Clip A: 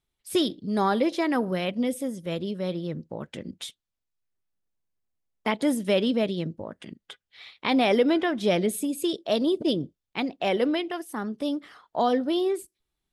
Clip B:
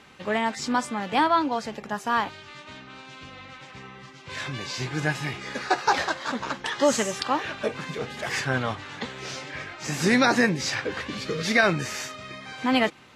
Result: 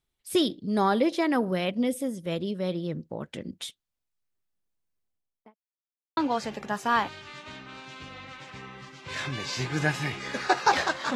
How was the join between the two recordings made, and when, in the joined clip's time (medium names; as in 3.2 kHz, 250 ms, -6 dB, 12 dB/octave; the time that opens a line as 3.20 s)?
clip A
5.01–5.56 s: studio fade out
5.56–6.17 s: mute
6.17 s: go over to clip B from 1.38 s